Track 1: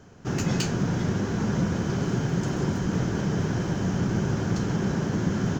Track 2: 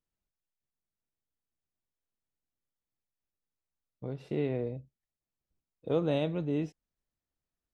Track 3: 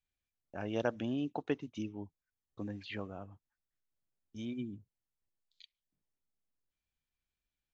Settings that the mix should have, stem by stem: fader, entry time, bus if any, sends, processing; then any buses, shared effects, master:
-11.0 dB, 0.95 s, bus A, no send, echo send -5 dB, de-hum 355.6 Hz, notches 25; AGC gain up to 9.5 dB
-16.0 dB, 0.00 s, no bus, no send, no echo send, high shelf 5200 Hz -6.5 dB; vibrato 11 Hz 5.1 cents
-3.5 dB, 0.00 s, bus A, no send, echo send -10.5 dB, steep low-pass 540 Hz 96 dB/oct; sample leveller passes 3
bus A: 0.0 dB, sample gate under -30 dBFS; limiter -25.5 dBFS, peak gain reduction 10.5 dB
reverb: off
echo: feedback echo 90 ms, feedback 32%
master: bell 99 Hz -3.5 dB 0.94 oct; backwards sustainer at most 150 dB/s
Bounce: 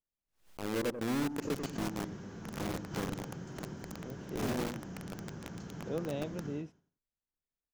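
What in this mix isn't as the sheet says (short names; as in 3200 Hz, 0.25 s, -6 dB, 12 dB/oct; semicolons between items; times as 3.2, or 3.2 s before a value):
stem 1 -11.0 dB -> -22.5 dB; stem 2 -16.0 dB -> -8.0 dB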